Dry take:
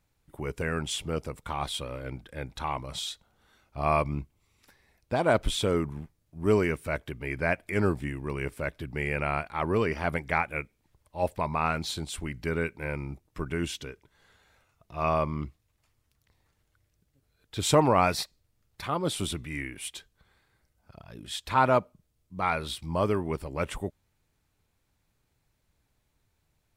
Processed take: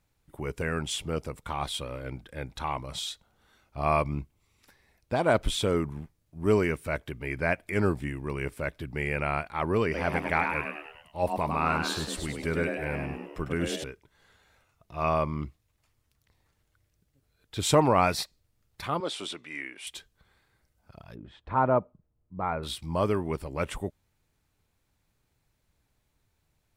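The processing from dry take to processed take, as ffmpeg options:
-filter_complex "[0:a]asettb=1/sr,asplit=3[s0][s1][s2];[s0]atrim=end=9.844[s3];[s1]atrim=start=9.84:end=13.84,asetpts=PTS-STARTPTS,afade=t=in:d=0.004:c=qsin,afade=t=out:st=3.996:d=0.004:c=qsin,asplit=7[s4][s5][s6][s7][s8][s9][s10];[s5]adelay=101,afreqshift=110,volume=0.562[s11];[s6]adelay=202,afreqshift=220,volume=0.288[s12];[s7]adelay=303,afreqshift=330,volume=0.146[s13];[s8]adelay=404,afreqshift=440,volume=0.075[s14];[s9]adelay=505,afreqshift=550,volume=0.038[s15];[s10]adelay=606,afreqshift=660,volume=0.0195[s16];[s4][s11][s12][s13][s14][s15][s16]amix=inputs=7:normalize=0,atrim=end_sample=176400[s17];[s2]atrim=start=13.836[s18];[s3][s17]acrossfade=d=0.004:c1=hsin:c2=qsin[s19];[s19][s18]acrossfade=d=0.004:c1=qsin:c2=hsin,asettb=1/sr,asplit=3[s20][s21][s22];[s20]atrim=end=19.004[s23];[s21]atrim=start=19:end=19.87,asetpts=PTS-STARTPTS,afade=t=in:d=0.004:c=qsin,afade=t=out:st=0.866:d=0.004:c=qsin,highpass=410,lowpass=6000[s24];[s22]atrim=start=19.866[s25];[s23][s24]acrossfade=d=0.004:c1=hsin:c2=qsin[s26];[s26][s25]acrossfade=d=0.004:c1=qsin:c2=hsin,asettb=1/sr,asplit=3[s27][s28][s29];[s27]atrim=end=21.154[s30];[s28]atrim=start=21.15:end=22.63,asetpts=PTS-STARTPTS,afade=t=in:d=0.004:c=qsin,afade=t=out:st=1.476:d=0.004:c=qsin,lowpass=1100[s31];[s29]atrim=start=22.626[s32];[s30][s31]acrossfade=d=0.004:c1=hsin:c2=qsin[s33];[s33][s32]acrossfade=d=0.004:c1=qsin:c2=hsin"

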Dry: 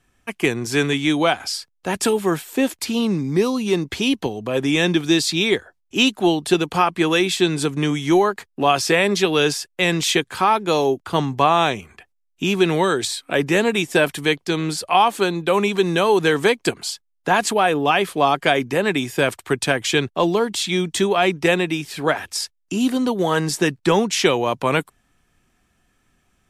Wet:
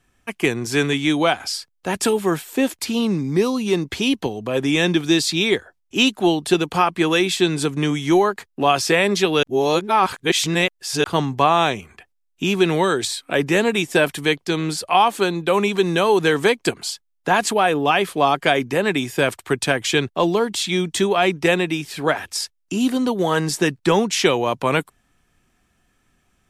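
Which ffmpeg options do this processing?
-filter_complex "[0:a]asplit=3[s0][s1][s2];[s0]atrim=end=9.432[s3];[s1]atrim=start=9.428:end=11.042,asetpts=PTS-STARTPTS,areverse[s4];[s2]atrim=start=11.038[s5];[s3][s4]acrossfade=d=0.004:c1=hsin:c2=hsin[s6];[s6][s5]acrossfade=d=0.004:c1=hsin:c2=hsin"

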